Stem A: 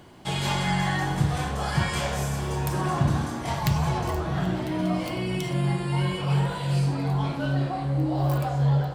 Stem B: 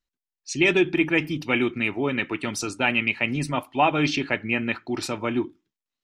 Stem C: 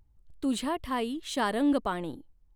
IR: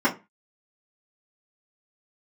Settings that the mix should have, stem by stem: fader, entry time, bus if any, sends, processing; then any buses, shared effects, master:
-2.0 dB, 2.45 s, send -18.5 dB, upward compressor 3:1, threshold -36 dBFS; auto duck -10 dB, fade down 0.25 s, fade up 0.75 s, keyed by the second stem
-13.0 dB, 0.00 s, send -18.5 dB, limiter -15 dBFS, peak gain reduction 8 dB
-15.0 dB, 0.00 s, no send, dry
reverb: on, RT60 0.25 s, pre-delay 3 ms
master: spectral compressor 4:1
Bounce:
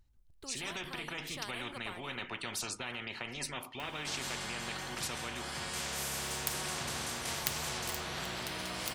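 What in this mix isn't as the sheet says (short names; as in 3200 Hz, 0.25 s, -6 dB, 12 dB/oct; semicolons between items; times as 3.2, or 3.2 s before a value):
stem A: entry 2.45 s -> 3.80 s; stem B -13.0 dB -> -6.5 dB; reverb return -8.5 dB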